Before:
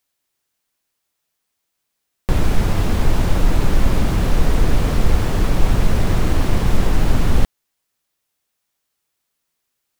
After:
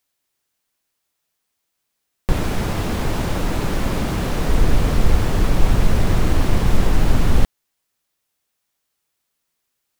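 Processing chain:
0:02.32–0:04.49: low-shelf EQ 83 Hz −10 dB

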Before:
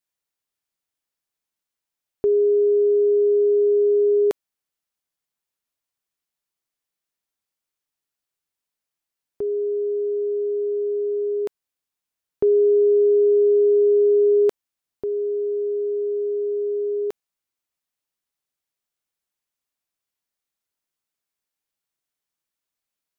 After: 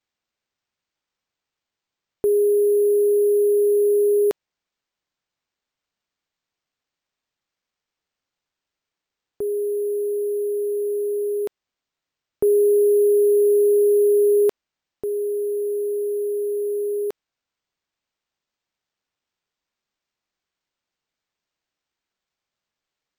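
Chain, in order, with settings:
bad sample-rate conversion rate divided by 4×, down none, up hold

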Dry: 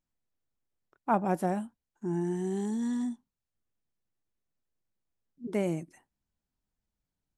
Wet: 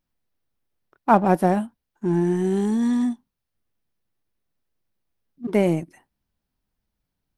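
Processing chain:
parametric band 7,300 Hz −9 dB 0.47 octaves
in parallel at −5 dB: dead-zone distortion −41 dBFS
on the sum: level +7 dB

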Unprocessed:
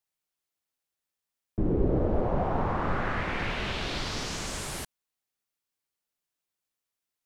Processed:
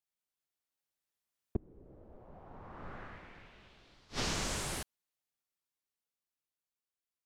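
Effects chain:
source passing by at 0:02.95, 6 m/s, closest 1.3 metres
gate with flip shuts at −36 dBFS, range −33 dB
level +15.5 dB

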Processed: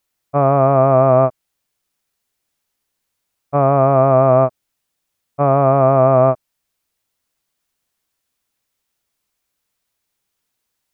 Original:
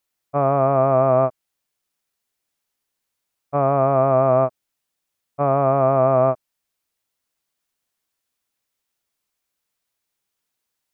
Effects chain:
low-shelf EQ 170 Hz +4.5 dB
level +4 dB

